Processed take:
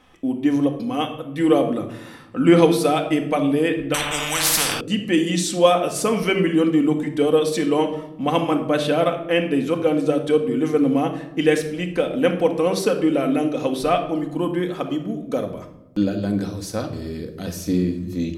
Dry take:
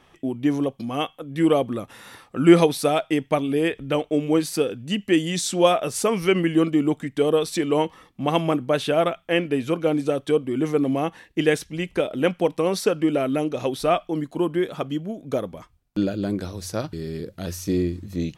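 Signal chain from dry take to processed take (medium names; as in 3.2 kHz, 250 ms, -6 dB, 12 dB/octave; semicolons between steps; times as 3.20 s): 1.78–2.64 s: treble shelf 5.5 kHz -6 dB; simulated room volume 2500 m³, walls furnished, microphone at 2 m; 3.94–4.81 s: spectrum-flattening compressor 10:1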